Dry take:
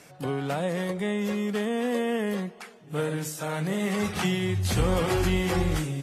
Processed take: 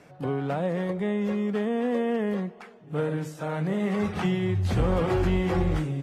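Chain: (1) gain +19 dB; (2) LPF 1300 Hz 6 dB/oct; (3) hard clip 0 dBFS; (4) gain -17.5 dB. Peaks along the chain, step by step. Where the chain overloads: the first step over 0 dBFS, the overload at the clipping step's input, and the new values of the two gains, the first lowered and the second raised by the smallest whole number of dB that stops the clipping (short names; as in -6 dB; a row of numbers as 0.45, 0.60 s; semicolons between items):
+5.5, +5.0, 0.0, -17.5 dBFS; step 1, 5.0 dB; step 1 +14 dB, step 4 -12.5 dB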